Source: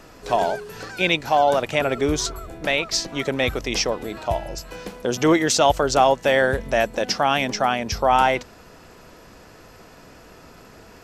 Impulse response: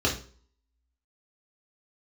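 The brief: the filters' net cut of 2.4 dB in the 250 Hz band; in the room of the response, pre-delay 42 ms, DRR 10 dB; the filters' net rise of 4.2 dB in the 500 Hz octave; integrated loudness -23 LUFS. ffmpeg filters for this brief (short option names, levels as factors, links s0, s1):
-filter_complex "[0:a]equalizer=f=250:t=o:g=-6.5,equalizer=f=500:t=o:g=6.5,asplit=2[s0][s1];[1:a]atrim=start_sample=2205,adelay=42[s2];[s1][s2]afir=irnorm=-1:irlink=0,volume=0.075[s3];[s0][s3]amix=inputs=2:normalize=0,volume=0.596"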